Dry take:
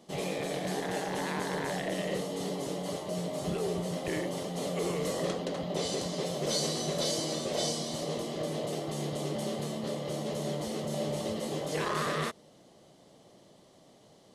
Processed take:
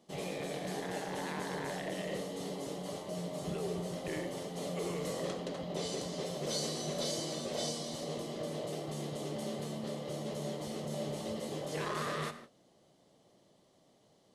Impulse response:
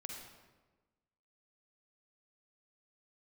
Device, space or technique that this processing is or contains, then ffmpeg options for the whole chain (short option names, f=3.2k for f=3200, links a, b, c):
keyed gated reverb: -filter_complex "[0:a]asplit=3[a][b][c];[1:a]atrim=start_sample=2205[d];[b][d]afir=irnorm=-1:irlink=0[e];[c]apad=whole_len=632826[f];[e][f]sidechaingate=range=-33dB:threshold=-51dB:ratio=16:detection=peak,volume=-2dB[g];[a][g]amix=inputs=2:normalize=0,volume=-8.5dB"